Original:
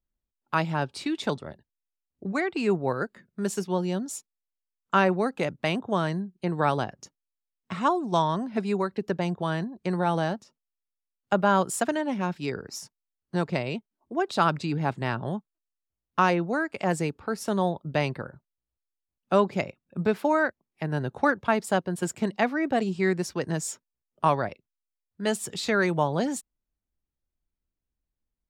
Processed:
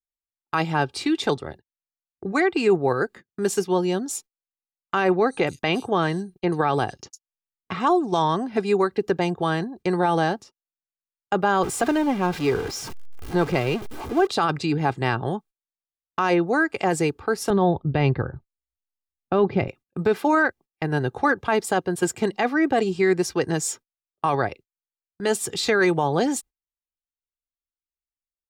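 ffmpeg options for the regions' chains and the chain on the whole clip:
-filter_complex "[0:a]asettb=1/sr,asplit=3[a][b][c];[a]atrim=end=5.124[d];[b]atrim=start=5.12:end=7.87,asetpts=PTS-STARTPTS,afade=t=in:d=0.004:c=qsin,afade=t=out:st=2.746:d=0.004:c=qsin,acompressor=mode=upward:threshold=-32dB:ratio=2.5:attack=3.2:release=140:knee=2.83:detection=peak,agate=range=-31dB:threshold=-53dB:ratio=16:release=100:detection=peak,acrossover=split=5800[e][f];[f]adelay=100[g];[e][g]amix=inputs=2:normalize=0,atrim=end_sample=121275[h];[c]atrim=start=7.866[i];[d][h]acrossfade=d=0.004:c1=hsin:c2=qsin[j];[j][i]acrossfade=d=0.004:c1=qsin:c2=hsin,asettb=1/sr,asplit=3[k][l][m];[k]atrim=end=11.634[n];[l]atrim=start=11.63:end=14.27,asetpts=PTS-STARTPTS,afade=t=in:d=0.004:c=qsin,afade=t=out:st=2.636:d=0.004:c=qsin,aeval=exprs='val(0)+0.5*0.0237*sgn(val(0))':c=same,highshelf=f=4k:g=-9,bandreject=f=1.8k:w=13[o];[m]atrim=start=14.266[p];[n][o]acrossfade=d=0.004:c1=hsin:c2=qsin[q];[q][p]acrossfade=d=0.004:c1=qsin:c2=hsin,asettb=1/sr,asplit=3[r][s][t];[r]atrim=end=17.504[u];[s]atrim=start=17.5:end=19.68,asetpts=PTS-STARTPTS,afade=t=in:d=0.004:c=qsin,afade=t=out:st=2.176:d=0.004:c=qsin,lowpass=f=4.9k:w=0.5412,lowpass=f=4.9k:w=1.3066,aemphasis=mode=reproduction:type=bsi[v];[t]atrim=start=19.676[w];[u][v]acrossfade=d=0.004:c1=hsin:c2=qsin[x];[x][w]acrossfade=d=0.004:c1=qsin:c2=hsin,agate=range=-28dB:threshold=-46dB:ratio=16:detection=peak,aecho=1:1:2.5:0.45,alimiter=limit=-16dB:level=0:latency=1:release=13,volume=5.5dB"

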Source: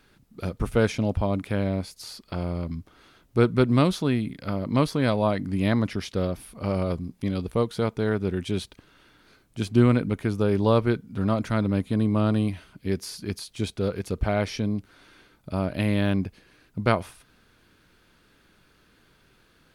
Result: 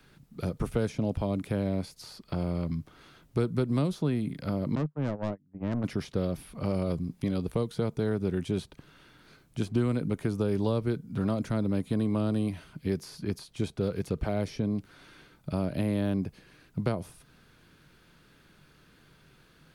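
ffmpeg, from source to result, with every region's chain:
-filter_complex "[0:a]asettb=1/sr,asplit=3[a][b][c];[a]atrim=end=4.754[d];[b]atrim=start=4.75:end=5.84,asetpts=PTS-STARTPTS,afade=t=in:d=0.004:c=qsin,afade=t=out:st=1.086:d=0.004:c=qsin,agate=range=-36dB:threshold=-23dB:ratio=16:release=100:detection=peak,lowpass=f=1.7k:w=0.5412,lowpass=f=1.7k:w=1.3066,aeval=exprs='(tanh(15.8*val(0)+0.45)-tanh(0.45))/15.8':c=same[e];[c]atrim=start=5.836[f];[d][e]acrossfade=d=0.004:c1=hsin:c2=qsin[g];[g][f]acrossfade=d=0.004:c1=qsin:c2=hsin,equalizer=f=150:t=o:w=0.42:g=8.5,acrossover=split=270|600|1400|4600[h][i][j][k][l];[h]acompressor=threshold=-30dB:ratio=4[m];[i]acompressor=threshold=-30dB:ratio=4[n];[j]acompressor=threshold=-44dB:ratio=4[o];[k]acompressor=threshold=-51dB:ratio=4[p];[l]acompressor=threshold=-51dB:ratio=4[q];[m][n][o][p][q]amix=inputs=5:normalize=0"

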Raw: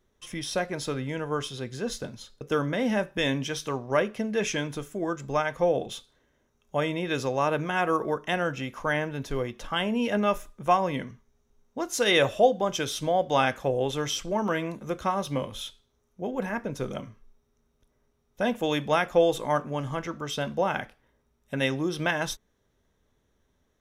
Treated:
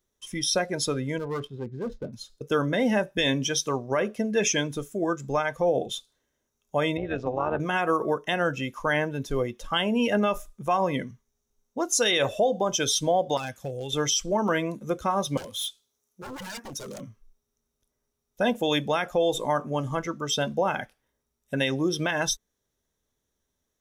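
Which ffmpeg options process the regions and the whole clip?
-filter_complex "[0:a]asettb=1/sr,asplit=3[a][b][c];[a]atrim=end=1.184[d];[b]atrim=start=1.18:end=2.13,asetpts=PTS-STARTPTS,afade=t=in:d=0.004:c=qsin,afade=t=out:st=0.946:d=0.004:c=qsin,highshelf=f=5.2k:g=-8,adynamicsmooth=sensitivity=4.5:basefreq=950,asoftclip=type=hard:threshold=-30dB[e];[c]atrim=start=2.126[f];[d][e]acrossfade=d=0.004:c1=hsin:c2=qsin[g];[g][f]acrossfade=d=0.004:c1=qsin:c2=hsin,asettb=1/sr,asplit=3[h][i][j];[h]atrim=end=6.974[k];[i]atrim=start=6.97:end=7.6,asetpts=PTS-STARTPTS,afade=t=in:d=0.004:c=qsin,afade=t=out:st=0.626:d=0.004:c=qsin,lowpass=2.2k,tremolo=f=240:d=0.788[l];[j]atrim=start=7.596[m];[k][l]acrossfade=d=0.004:c1=hsin:c2=qsin[n];[n][m]acrossfade=d=0.004:c1=qsin:c2=hsin,asettb=1/sr,asplit=3[o][p][q];[o]atrim=end=13.374[r];[p]atrim=start=13.37:end=13.92,asetpts=PTS-STARTPTS,afade=t=in:d=0.004:c=qsin,afade=t=out:st=0.546:d=0.004:c=qsin,equalizer=f=120:w=0.93:g=8.5,acrossover=split=1900|4000[s][t][u];[s]acompressor=threshold=-35dB:ratio=4[v];[t]acompressor=threshold=-41dB:ratio=4[w];[u]acompressor=threshold=-45dB:ratio=4[x];[v][w][x]amix=inputs=3:normalize=0,aeval=exprs='0.0473*(abs(mod(val(0)/0.0473+3,4)-2)-1)':c=same[y];[q]atrim=start=13.916[z];[r][y]acrossfade=d=0.004:c1=hsin:c2=qsin[aa];[aa][z]acrossfade=d=0.004:c1=qsin:c2=hsin,asettb=1/sr,asplit=3[ab][ac][ad];[ab]atrim=end=15.374[ae];[ac]atrim=start=15.37:end=17.01,asetpts=PTS-STARTPTS,afade=t=in:d=0.004:c=qsin,afade=t=out:st=1.636:d=0.004:c=qsin,highpass=f=200:p=1,aeval=exprs='0.02*(abs(mod(val(0)/0.02+3,4)-2)-1)':c=same,highshelf=f=4.2k:g=6[af];[ad]atrim=start=17.006[ag];[ae][af]acrossfade=d=0.004:c1=hsin:c2=qsin[ah];[ah][ag]acrossfade=d=0.004:c1=qsin:c2=hsin,afftdn=nr=13:nf=-35,bass=f=250:g=-2,treble=f=4k:g=12,alimiter=limit=-17.5dB:level=0:latency=1:release=79,volume=3.5dB"

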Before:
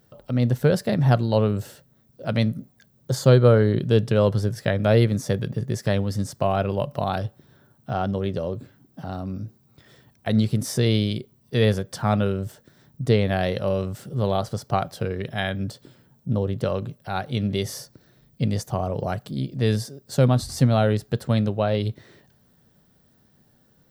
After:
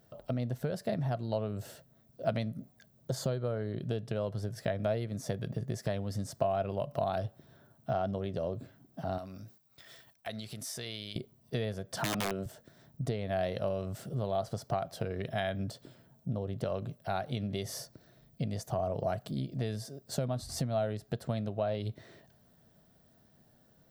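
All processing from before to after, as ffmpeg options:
-filter_complex "[0:a]asettb=1/sr,asplit=3[a][b][c];[a]atrim=end=9.184[d];[b]atrim=start=9.18:end=11.16,asetpts=PTS-STARTPTS,afade=t=in:d=0.004:c=qsin,afade=t=out:st=1.976:d=0.004:c=qsin,agate=range=-33dB:threshold=-54dB:ratio=3:release=100:detection=peak,tiltshelf=f=820:g=-8,acompressor=threshold=-39dB:ratio=2.5:attack=3.2:release=140:knee=1:detection=peak[e];[c]atrim=start=11.156[f];[d][e]acrossfade=d=0.004:c1=hsin:c2=qsin[g];[g][f]acrossfade=d=0.004:c1=qsin:c2=hsin,asettb=1/sr,asplit=3[h][i][j];[h]atrim=end=11.974[k];[i]atrim=start=11.97:end=12.46,asetpts=PTS-STARTPTS,afade=t=in:d=0.004:c=qsin,afade=t=out:st=0.486:d=0.004:c=qsin,highpass=160,acontrast=26,aeval=exprs='(mod(3.98*val(0)+1,2)-1)/3.98':c=same[l];[j]atrim=start=12.456[m];[k][l]acrossfade=d=0.004:c1=hsin:c2=qsin[n];[n][m]acrossfade=d=0.004:c1=qsin:c2=hsin,acompressor=threshold=-26dB:ratio=12,equalizer=f=660:w=7.1:g=11,volume=-4.5dB"

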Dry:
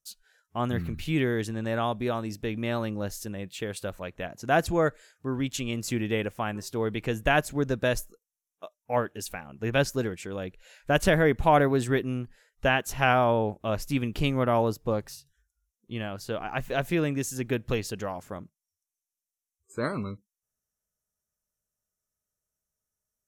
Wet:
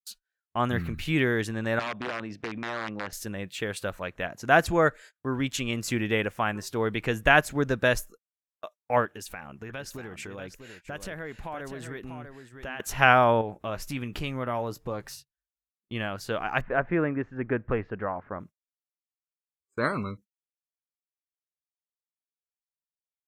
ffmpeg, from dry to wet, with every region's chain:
-filter_complex "[0:a]asettb=1/sr,asplit=3[a][b][c];[a]atrim=end=1.794[d];[b]atrim=start=1.79:end=3.13,asetpts=PTS-STARTPTS,afade=t=in:d=0.004:c=qsin,afade=t=out:st=1.336:d=0.004:c=qsin,aeval=exprs='(mod(11.9*val(0)+1,2)-1)/11.9':c=same,highpass=130,lowpass=3.3k,acompressor=threshold=-32dB:ratio=6:attack=3.2:release=140:knee=1:detection=peak[e];[c]atrim=start=3.126[f];[d][e]acrossfade=d=0.004:c1=hsin:c2=qsin[g];[g][f]acrossfade=d=0.004:c1=qsin:c2=hsin,asettb=1/sr,asplit=3[h][i][j];[h]atrim=end=9.054[k];[i]atrim=start=9.05:end=12.8,asetpts=PTS-STARTPTS,afade=t=in:d=0.004:c=qsin,afade=t=out:st=3.746:d=0.004:c=qsin,acompressor=threshold=-37dB:ratio=6:attack=3.2:release=140:knee=1:detection=peak,aecho=1:1:644:0.398,atrim=end_sample=165375[l];[j]atrim=start=12.796[m];[k][l]acrossfade=d=0.004:c1=hsin:c2=qsin[n];[n][m]acrossfade=d=0.004:c1=qsin:c2=hsin,asettb=1/sr,asplit=3[o][p][q];[o]atrim=end=13.414[r];[p]atrim=start=13.41:end=15.09,asetpts=PTS-STARTPTS,afade=t=in:d=0.004:c=qsin,afade=t=out:st=1.676:d=0.004:c=qsin,asplit=2[s][t];[t]adelay=16,volume=-13dB[u];[s][u]amix=inputs=2:normalize=0,atrim=end_sample=74088,acompressor=threshold=-34dB:ratio=2:attack=3.2:release=140:knee=1:detection=peak[v];[q]atrim=start=15.086[w];[r][v]acrossfade=d=0.004:c1=hsin:c2=qsin[x];[x][w]acrossfade=d=0.004:c1=qsin:c2=hsin,asettb=1/sr,asplit=3[y][z][aa];[y]atrim=end=16.614[ab];[z]atrim=start=16.61:end=18.4,asetpts=PTS-STARTPTS,afade=t=in:d=0.004:c=qsin,afade=t=out:st=1.786:d=0.004:c=qsin,lowpass=f=1.8k:w=0.5412,lowpass=f=1.8k:w=1.3066,equalizer=f=140:t=o:w=0.36:g=-4[ac];[aa]atrim=start=18.396[ad];[ab][ac]acrossfade=d=0.004:c1=hsin:c2=qsin[ae];[ae][ad]acrossfade=d=0.004:c1=qsin:c2=hsin,agate=range=-29dB:threshold=-48dB:ratio=16:detection=peak,equalizer=f=1.6k:t=o:w=1.9:g=6.5"

